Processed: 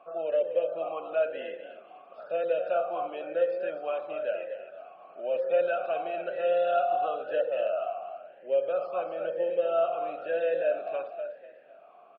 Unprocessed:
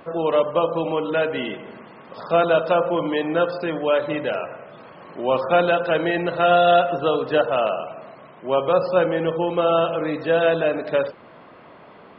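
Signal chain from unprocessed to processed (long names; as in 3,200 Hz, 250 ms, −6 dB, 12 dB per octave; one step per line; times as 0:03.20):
in parallel at −1 dB: brickwall limiter −13 dBFS, peak gain reduction 7 dB
on the sum: echo with shifted repeats 248 ms, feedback 37%, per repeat +36 Hz, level −10 dB
formant filter swept between two vowels a-e 1 Hz
level −7 dB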